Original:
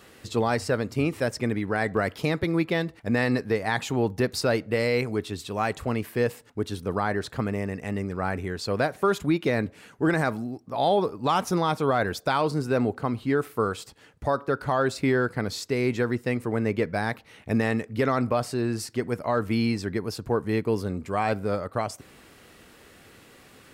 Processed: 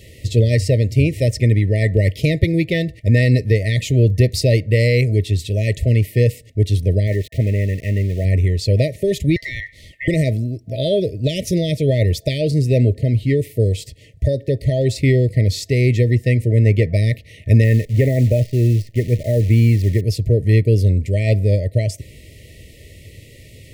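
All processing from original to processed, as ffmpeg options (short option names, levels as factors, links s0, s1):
-filter_complex "[0:a]asettb=1/sr,asplit=3[s0][s1][s2];[s0]atrim=end=7.074[s3];[s1]atrim=start=7.07:end=8.25,asetpts=PTS-STARTPTS,afade=t=in:d=0.004:c=qsin,afade=t=out:st=1.176:d=0.004:c=qsin,lowpass=f=3300:w=0.5412,lowpass=f=3300:w=1.3066,lowshelf=f=170:g=-5,aeval=exprs='val(0)*gte(abs(val(0)),0.00841)':c=same[s4];[s2]atrim=start=8.246[s5];[s3][s4]acrossfade=d=0.004:c1=hsin:c2=qsin[s6];[s6][s5]acrossfade=d=0.004:c1=qsin:c2=hsin,asettb=1/sr,asplit=3[s7][s8][s9];[s7]atrim=end=9.364[s10];[s8]atrim=start=9.36:end=10.08,asetpts=PTS-STARTPTS,afade=t=in:d=0.004:c=qsin,afade=t=out:st=0.716:d=0.004:c=qsin,lowshelf=f=330:g=5,acompressor=threshold=0.0562:ratio=12:attack=3.2:release=140:knee=1:detection=peak,aeval=exprs='val(0)*sin(2*PI*1700*n/s)':c=same[s11];[s9]atrim=start=10.076[s12];[s10][s11]acrossfade=d=0.004:c1=hsin:c2=qsin[s13];[s13][s12]acrossfade=d=0.004:c1=qsin:c2=hsin,asettb=1/sr,asplit=3[s14][s15][s16];[s14]atrim=end=17.644[s17];[s15]atrim=start=17.64:end=20.01,asetpts=PTS-STARTPTS,afade=t=in:d=0.004:c=qsin,afade=t=out:st=2.366:d=0.004:c=qsin,lowpass=2200,acrusher=bits=8:dc=4:mix=0:aa=0.000001[s18];[s16]atrim=start=20.006[s19];[s17][s18]acrossfade=d=0.004:c1=hsin:c2=qsin[s20];[s20][s19]acrossfade=d=0.004:c1=qsin:c2=hsin,afftfilt=real='re*(1-between(b*sr/4096,660,1800))':imag='im*(1-between(b*sr/4096,660,1800))':win_size=4096:overlap=0.75,lowshelf=f=150:t=q:w=1.5:g=11.5,volume=2.24"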